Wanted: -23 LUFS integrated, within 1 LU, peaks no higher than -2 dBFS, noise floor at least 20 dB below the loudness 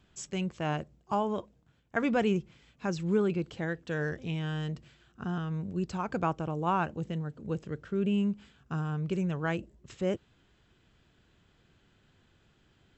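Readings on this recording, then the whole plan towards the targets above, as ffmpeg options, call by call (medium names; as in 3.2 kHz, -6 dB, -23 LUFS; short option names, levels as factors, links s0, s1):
loudness -33.0 LUFS; peak level -14.5 dBFS; loudness target -23.0 LUFS
-> -af "volume=3.16"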